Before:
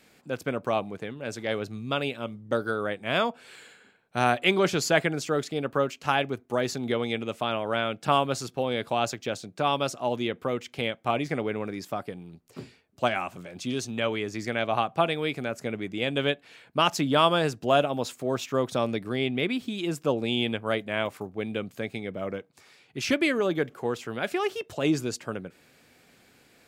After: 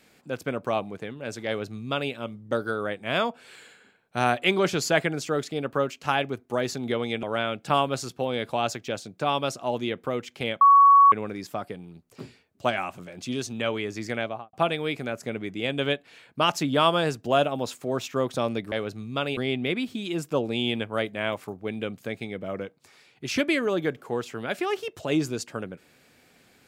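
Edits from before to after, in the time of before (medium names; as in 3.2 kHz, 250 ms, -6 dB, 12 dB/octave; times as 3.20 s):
1.47–2.12 s: copy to 19.10 s
7.23–7.61 s: delete
10.99–11.50 s: bleep 1.12 kHz -11 dBFS
14.52–14.91 s: studio fade out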